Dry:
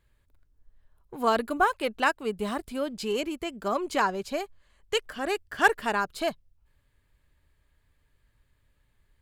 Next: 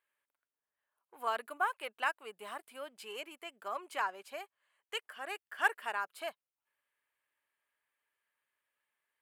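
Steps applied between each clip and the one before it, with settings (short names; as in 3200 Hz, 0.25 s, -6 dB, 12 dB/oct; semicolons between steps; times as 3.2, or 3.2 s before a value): HPF 770 Hz 12 dB/oct; band shelf 5100 Hz -8 dB 1.2 oct; gain -7.5 dB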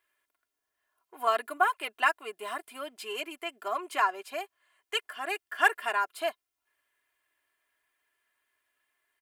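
comb 2.9 ms, depth 71%; gain +6 dB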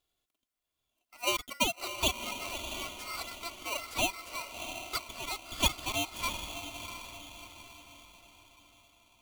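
diffused feedback echo 0.683 s, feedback 45%, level -8 dB; polarity switched at an audio rate 1700 Hz; gain -4.5 dB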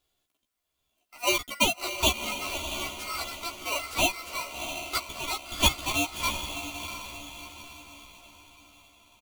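doubler 14 ms -2.5 dB; gain +3.5 dB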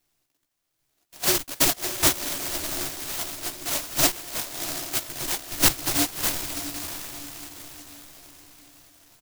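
fixed phaser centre 320 Hz, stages 8; noise-modulated delay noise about 5500 Hz, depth 0.31 ms; gain +6.5 dB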